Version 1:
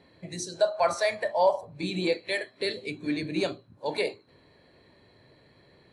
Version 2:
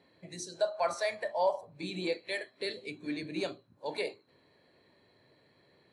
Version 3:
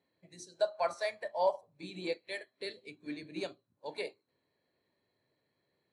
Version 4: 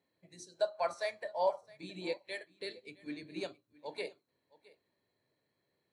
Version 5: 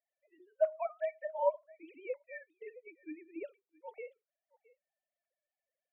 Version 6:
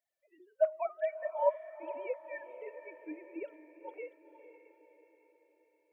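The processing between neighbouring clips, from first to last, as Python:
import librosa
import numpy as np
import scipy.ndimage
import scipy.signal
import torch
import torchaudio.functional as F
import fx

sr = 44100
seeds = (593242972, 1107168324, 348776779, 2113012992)

y1 = fx.highpass(x, sr, hz=160.0, slope=6)
y1 = y1 * librosa.db_to_amplitude(-6.0)
y2 = fx.upward_expand(y1, sr, threshold_db=-53.0, expansion=1.5)
y3 = y2 + 10.0 ** (-22.0 / 20.0) * np.pad(y2, (int(665 * sr / 1000.0), 0))[:len(y2)]
y3 = y3 * librosa.db_to_amplitude(-1.5)
y4 = fx.sine_speech(y3, sr)
y5 = fx.echo_diffused(y4, sr, ms=491, feedback_pct=51, wet_db=-12.0)
y5 = y5 * librosa.db_to_amplitude(1.5)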